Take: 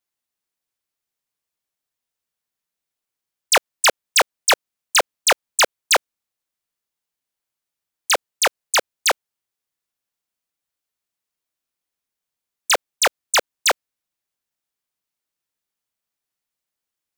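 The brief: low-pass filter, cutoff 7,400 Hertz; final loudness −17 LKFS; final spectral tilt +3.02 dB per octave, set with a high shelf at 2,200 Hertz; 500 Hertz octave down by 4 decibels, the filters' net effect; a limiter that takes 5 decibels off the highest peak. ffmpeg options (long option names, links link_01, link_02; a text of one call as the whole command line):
ffmpeg -i in.wav -af "lowpass=7400,equalizer=frequency=500:width_type=o:gain=-5.5,highshelf=frequency=2200:gain=6,volume=2dB,alimiter=limit=-7.5dB:level=0:latency=1" out.wav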